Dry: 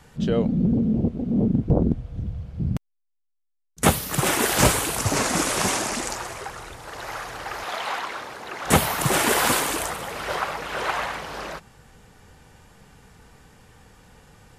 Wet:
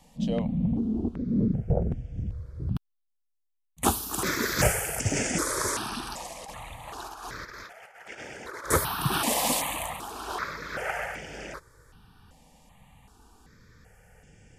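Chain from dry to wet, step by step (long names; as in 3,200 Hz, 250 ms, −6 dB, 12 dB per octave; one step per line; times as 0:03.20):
0:06.42–0:08.64: compressor whose output falls as the input rises −35 dBFS, ratio −0.5
step-sequenced phaser 2.6 Hz 390–4,000 Hz
level −2.5 dB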